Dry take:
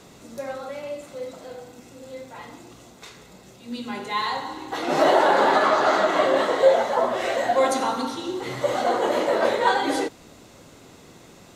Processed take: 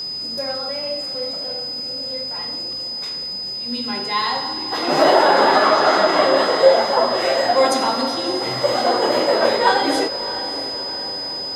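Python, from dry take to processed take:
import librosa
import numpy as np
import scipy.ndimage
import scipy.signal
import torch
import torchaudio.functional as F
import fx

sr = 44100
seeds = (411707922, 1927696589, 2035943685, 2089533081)

y = fx.echo_diffused(x, sr, ms=640, feedback_pct=57, wet_db=-13)
y = y + 10.0 ** (-29.0 / 20.0) * np.sin(2.0 * np.pi * 5000.0 * np.arange(len(y)) / sr)
y = y * 10.0 ** (4.0 / 20.0)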